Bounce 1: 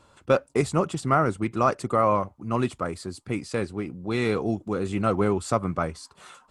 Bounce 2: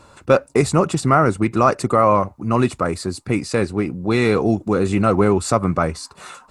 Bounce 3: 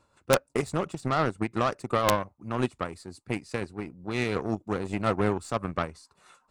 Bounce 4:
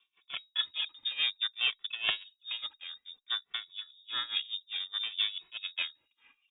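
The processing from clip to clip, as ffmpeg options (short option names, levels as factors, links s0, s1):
-filter_complex "[0:a]bandreject=f=3200:w=7.3,asplit=2[s0][s1];[s1]alimiter=limit=0.119:level=0:latency=1:release=92,volume=1.12[s2];[s0][s2]amix=inputs=2:normalize=0,volume=1.5"
-af "aeval=exprs='0.891*(cos(1*acos(clip(val(0)/0.891,-1,1)))-cos(1*PI/2))+0.0447*(cos(4*acos(clip(val(0)/0.891,-1,1)))-cos(4*PI/2))+0.0891*(cos(7*acos(clip(val(0)/0.891,-1,1)))-cos(7*PI/2))':c=same,tremolo=f=5.7:d=0.41,aeval=exprs='(mod(1.58*val(0)+1,2)-1)/1.58':c=same,volume=0.447"
-filter_complex "[0:a]tremolo=f=4.8:d=0.87,lowpass=f=3200:t=q:w=0.5098,lowpass=f=3200:t=q:w=0.6013,lowpass=f=3200:t=q:w=0.9,lowpass=f=3200:t=q:w=2.563,afreqshift=-3800,asplit=2[s0][s1];[s1]adelay=2.2,afreqshift=-0.59[s2];[s0][s2]amix=inputs=2:normalize=1"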